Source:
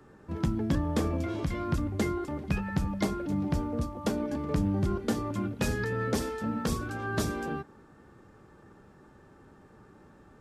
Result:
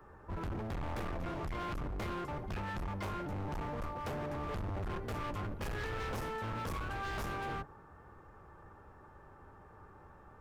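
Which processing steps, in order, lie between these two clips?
octave divider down 1 oct, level +3 dB; graphic EQ 125/250/1000/4000/8000 Hz -6/-8/+7/-7/-8 dB; overload inside the chain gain 35 dB; trim -1.5 dB

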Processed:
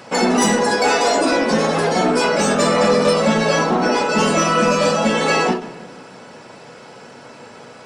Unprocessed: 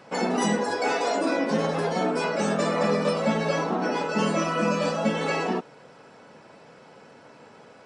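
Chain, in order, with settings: treble shelf 3.7 kHz +7 dB; saturation -17 dBFS, distortion -19 dB; on a send at -9 dB: reverberation RT60 1.4 s, pre-delay 8 ms; on the sum: endings held to a fixed fall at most 130 dB/s; trim +9 dB

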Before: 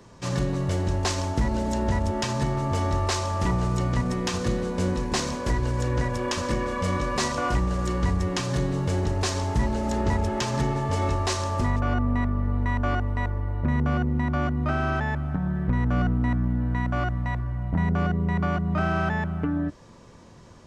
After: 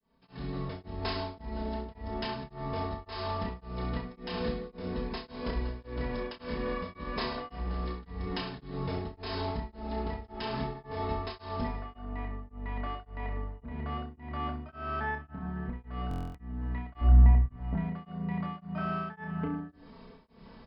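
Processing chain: fade-in on the opening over 0.90 s; brick-wall FIR low-pass 5.3 kHz; comb 4.5 ms, depth 84%; compression, threshold -26 dBFS, peak gain reduction 10 dB; 17.01–17.46 s: tilt EQ -4 dB/octave; on a send: reverse bouncing-ball echo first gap 30 ms, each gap 1.15×, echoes 5; on the sum: buffer glitch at 16.09 s, samples 1024, times 10; tremolo of two beating tones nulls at 1.8 Hz; trim -4.5 dB

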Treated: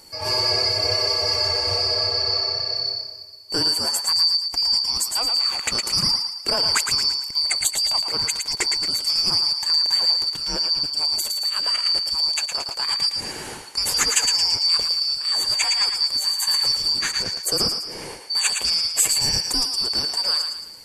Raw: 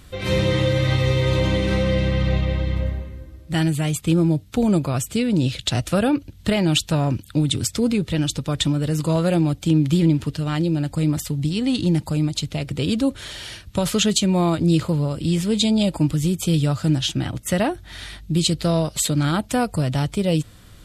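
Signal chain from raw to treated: four frequency bands reordered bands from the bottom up 2341; high-order bell 2.6 kHz -9 dB 2.3 oct; thinning echo 112 ms, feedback 47%, high-pass 680 Hz, level -5.5 dB; trim +5 dB

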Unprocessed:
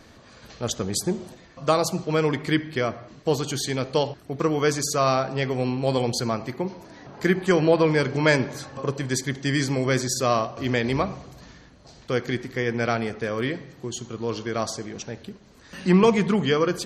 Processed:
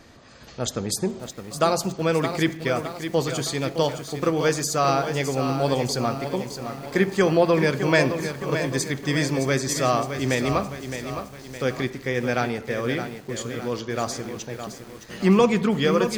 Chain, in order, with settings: speed mistake 24 fps film run at 25 fps; bit-crushed delay 614 ms, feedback 55%, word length 7-bit, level -8.5 dB

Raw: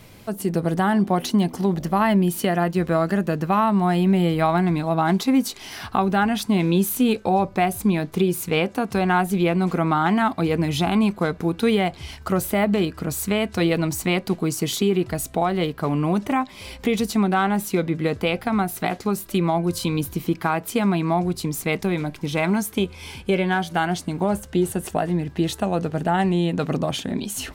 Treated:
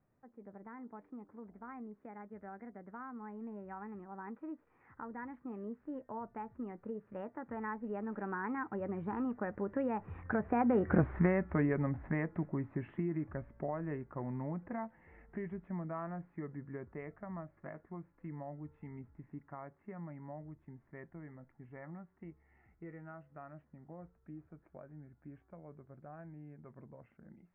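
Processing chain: Doppler pass-by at 11.02 s, 55 m/s, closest 5.5 m; steep low-pass 2 kHz 48 dB/octave; compression 2:1, threshold -46 dBFS, peak gain reduction 13 dB; trim +12 dB

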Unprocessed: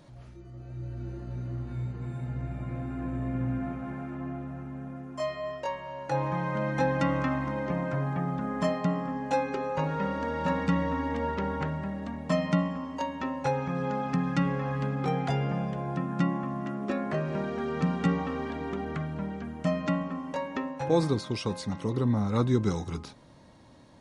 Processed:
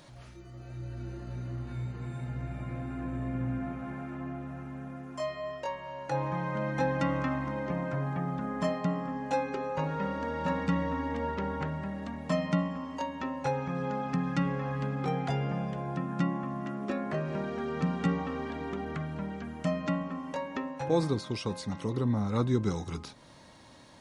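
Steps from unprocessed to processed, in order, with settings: tape noise reduction on one side only encoder only; trim -2.5 dB

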